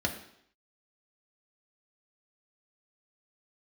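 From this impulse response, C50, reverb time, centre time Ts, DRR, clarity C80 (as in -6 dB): 9.5 dB, 0.70 s, 16 ms, 1.0 dB, 12.0 dB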